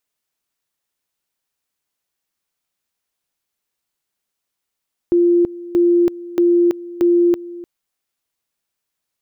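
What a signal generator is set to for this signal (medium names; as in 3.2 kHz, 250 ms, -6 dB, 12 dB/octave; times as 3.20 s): two-level tone 347 Hz -10 dBFS, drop 18.5 dB, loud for 0.33 s, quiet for 0.30 s, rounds 4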